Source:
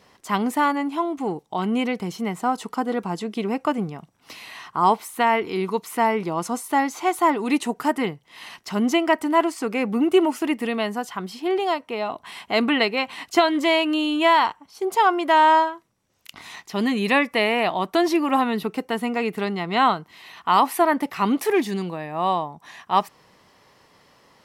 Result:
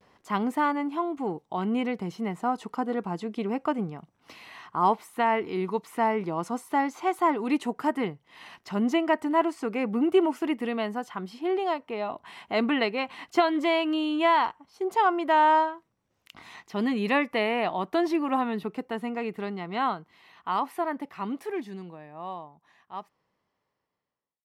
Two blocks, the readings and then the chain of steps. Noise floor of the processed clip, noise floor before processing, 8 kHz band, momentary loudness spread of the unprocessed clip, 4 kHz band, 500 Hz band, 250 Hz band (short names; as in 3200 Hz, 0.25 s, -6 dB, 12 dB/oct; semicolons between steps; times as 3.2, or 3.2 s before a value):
-78 dBFS, -59 dBFS, under -10 dB, 11 LU, -9.0 dB, -5.0 dB, -4.5 dB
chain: ending faded out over 7.17 s; high shelf 3600 Hz -10.5 dB; vibrato 0.31 Hz 25 cents; gain -4 dB